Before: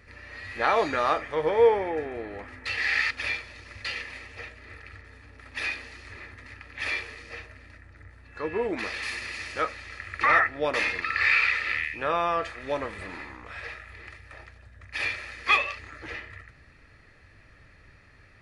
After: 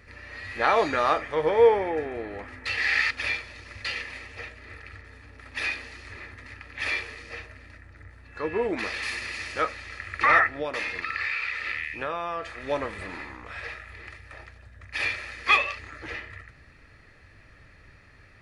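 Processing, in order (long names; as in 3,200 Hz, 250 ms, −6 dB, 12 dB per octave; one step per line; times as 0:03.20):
0:10.50–0:12.63: downward compressor 5 to 1, threshold −29 dBFS, peak gain reduction 10 dB
level +1.5 dB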